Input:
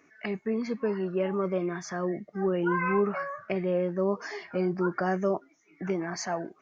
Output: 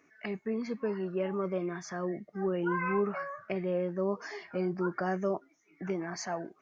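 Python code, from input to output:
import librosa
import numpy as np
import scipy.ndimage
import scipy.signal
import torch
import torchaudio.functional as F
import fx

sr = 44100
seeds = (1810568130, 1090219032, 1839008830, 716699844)

y = F.gain(torch.from_numpy(x), -4.0).numpy()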